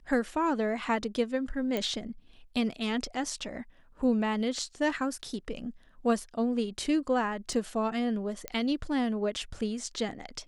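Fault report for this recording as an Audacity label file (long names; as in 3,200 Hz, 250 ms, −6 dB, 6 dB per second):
1.770000	1.770000	click −17 dBFS
7.530000	7.530000	drop-out 2.1 ms
8.480000	8.480000	click −17 dBFS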